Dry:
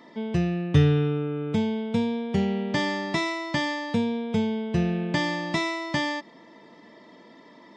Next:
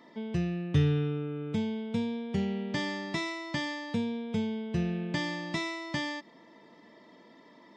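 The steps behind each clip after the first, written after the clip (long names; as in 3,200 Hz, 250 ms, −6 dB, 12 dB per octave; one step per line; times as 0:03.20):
dynamic equaliser 770 Hz, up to −4 dB, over −37 dBFS, Q 0.81
in parallel at −11 dB: hard clipping −16.5 dBFS, distortion −16 dB
on the sum: level −7.5 dB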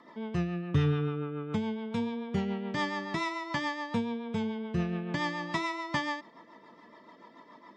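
parametric band 1,100 Hz +13 dB 0.97 octaves
rotating-speaker cabinet horn 7 Hz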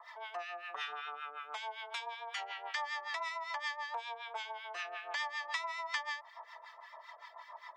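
elliptic high-pass filter 700 Hz, stop band 70 dB
downward compressor 3 to 1, threshold −43 dBFS, peak gain reduction 11.5 dB
two-band tremolo in antiphase 5.3 Hz, depth 100%, crossover 1,200 Hz
level +10 dB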